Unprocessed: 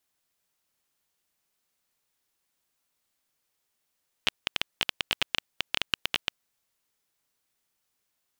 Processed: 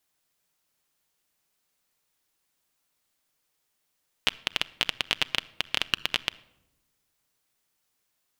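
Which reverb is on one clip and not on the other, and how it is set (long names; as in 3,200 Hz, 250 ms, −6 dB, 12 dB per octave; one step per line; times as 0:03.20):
rectangular room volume 3,100 cubic metres, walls furnished, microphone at 0.49 metres
level +2 dB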